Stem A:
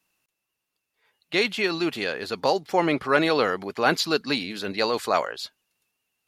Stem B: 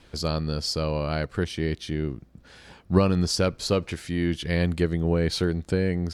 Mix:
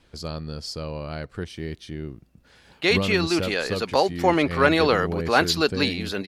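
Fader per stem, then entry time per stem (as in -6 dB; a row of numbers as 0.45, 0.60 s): +2.0, -5.5 dB; 1.50, 0.00 s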